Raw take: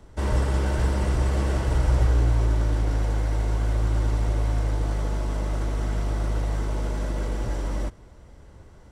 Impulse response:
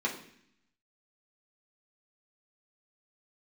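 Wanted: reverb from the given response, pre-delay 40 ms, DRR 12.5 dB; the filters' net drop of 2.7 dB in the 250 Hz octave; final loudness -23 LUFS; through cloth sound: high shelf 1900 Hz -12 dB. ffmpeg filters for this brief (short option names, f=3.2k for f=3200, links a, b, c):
-filter_complex "[0:a]equalizer=f=250:t=o:g=-3.5,asplit=2[a][b];[1:a]atrim=start_sample=2205,adelay=40[c];[b][c]afir=irnorm=-1:irlink=0,volume=-19.5dB[d];[a][d]amix=inputs=2:normalize=0,highshelf=f=1.9k:g=-12,volume=3dB"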